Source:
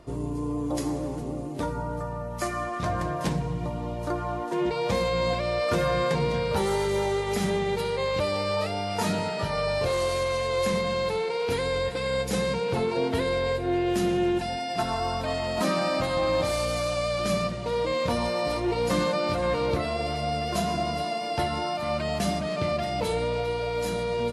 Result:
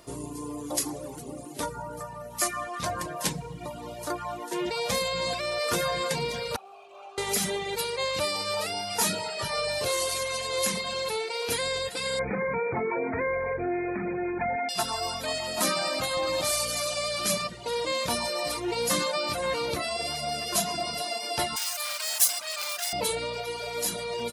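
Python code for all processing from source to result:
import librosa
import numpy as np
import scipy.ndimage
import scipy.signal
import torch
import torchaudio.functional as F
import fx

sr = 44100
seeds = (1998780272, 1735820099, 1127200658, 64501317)

y = fx.chain(x, sr, fx.low_shelf(hz=140.0, db=7.0),
    fx.clip_hard(threshold_db=-25.5),
    fx.vowel_filter(vowel='a'), at=(6.56, 7.18))
y = fx.chain(y, sr, fx.brickwall_lowpass(high_hz=2500.0),
    fx.env_flatten(amount_pct=70), at=(12.19, 14.69))
y = fx.chain(y, sr, fx.clip_hard(threshold_db=-28.5),
    fx.highpass(hz=900.0, slope=12),
    fx.high_shelf(hz=5000.0, db=11.5), at=(21.56, 22.93))
y = fx.low_shelf(y, sr, hz=150.0, db=7.5)
y = fx.dereverb_blind(y, sr, rt60_s=1.1)
y = fx.riaa(y, sr, side='recording')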